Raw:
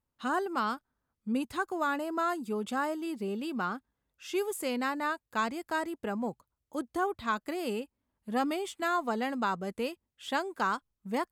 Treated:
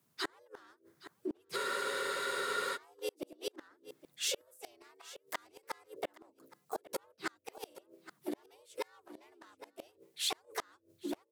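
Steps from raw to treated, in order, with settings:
in parallel at −3 dB: wave folding −28 dBFS
on the sum: mains-hum notches 60/120/180/240/300/360/420 Hz
frequency shifter +93 Hz
pitch-shifted copies added −5 semitones −14 dB, +3 semitones −5 dB, +4 semitones −9 dB
gate with flip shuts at −20 dBFS, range −37 dB
on a send: single-tap delay 818 ms −20.5 dB
on the sum: downward compressor 4 to 1, threshold −38 dBFS, peak gain reduction 11 dB
high-shelf EQ 3,400 Hz +9 dB
frozen spectrum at 0:01.58, 1.16 s
level +1.5 dB

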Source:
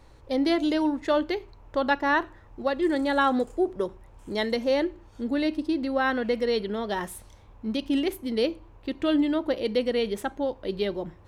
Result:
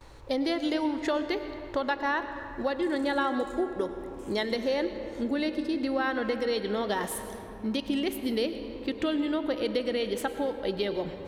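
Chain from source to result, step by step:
noise gate with hold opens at −48 dBFS
low-shelf EQ 460 Hz −4.5 dB
downward compressor 4 to 1, threshold −33 dBFS, peak gain reduction 12 dB
on a send: convolution reverb RT60 3.1 s, pre-delay 93 ms, DRR 9 dB
on the sum: level +6 dB

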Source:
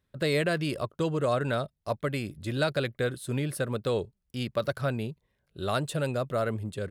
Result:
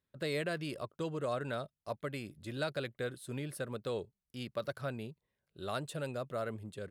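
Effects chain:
low-shelf EQ 78 Hz −10 dB
level −8.5 dB

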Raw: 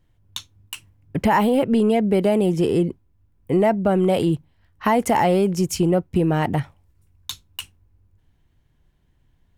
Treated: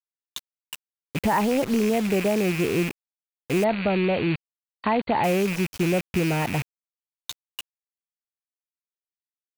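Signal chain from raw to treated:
loose part that buzzes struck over −28 dBFS, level −15 dBFS
treble cut that deepens with the level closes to 3,000 Hz, closed at −18.5 dBFS
bit reduction 5 bits
0:03.64–0:05.24: linear-phase brick-wall low-pass 4,600 Hz
level −4.5 dB

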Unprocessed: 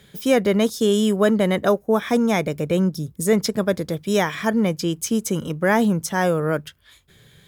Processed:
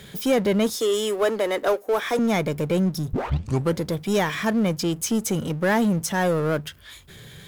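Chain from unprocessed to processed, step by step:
0:00.77–0:02.19: high-pass filter 330 Hz 24 dB per octave
0:03.13: tape start 0.66 s
power curve on the samples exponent 0.7
level −5 dB

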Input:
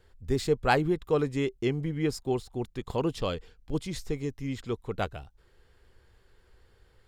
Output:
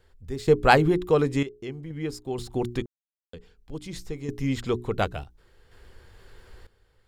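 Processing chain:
mains-hum notches 60/120/180/240/300/360/420 Hz
in parallel at +1 dB: downward compressor, threshold −42 dBFS, peak gain reduction 21.5 dB
on the sum: sample-and-hold tremolo 2.1 Hz, depth 100%
level +6 dB

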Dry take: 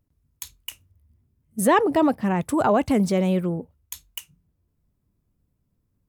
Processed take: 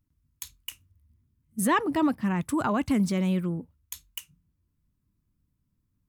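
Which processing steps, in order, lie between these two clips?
flat-topped bell 570 Hz −8.5 dB 1.3 octaves
level −3 dB

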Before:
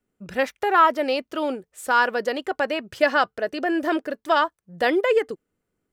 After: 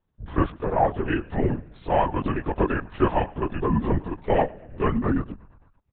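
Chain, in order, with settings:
phase-vocoder pitch shift without resampling −9 semitones
speech leveller within 5 dB 0.5 s
on a send: echo with shifted repeats 114 ms, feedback 65%, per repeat −52 Hz, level −22 dB
on the sum: linear-prediction vocoder at 8 kHz whisper

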